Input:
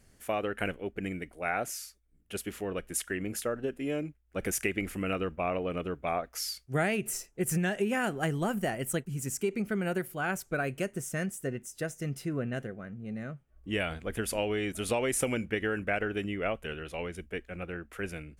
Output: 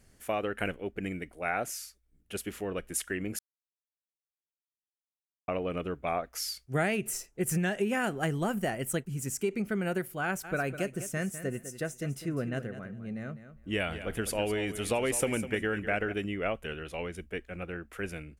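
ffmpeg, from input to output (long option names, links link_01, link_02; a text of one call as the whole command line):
ffmpeg -i in.wav -filter_complex "[0:a]asplit=3[link_01][link_02][link_03];[link_01]afade=type=out:start_time=10.43:duration=0.02[link_04];[link_02]aecho=1:1:202|404:0.251|0.0427,afade=type=in:start_time=10.43:duration=0.02,afade=type=out:start_time=16.12:duration=0.02[link_05];[link_03]afade=type=in:start_time=16.12:duration=0.02[link_06];[link_04][link_05][link_06]amix=inputs=3:normalize=0,asplit=3[link_07][link_08][link_09];[link_07]atrim=end=3.39,asetpts=PTS-STARTPTS,afade=type=out:start_time=3.386:duration=0.004:curve=hsin[link_10];[link_08]atrim=start=3.39:end=5.48,asetpts=PTS-STARTPTS,volume=0[link_11];[link_09]atrim=start=5.48,asetpts=PTS-STARTPTS,afade=type=in:duration=0.004:curve=hsin[link_12];[link_10][link_11][link_12]concat=n=3:v=0:a=1" out.wav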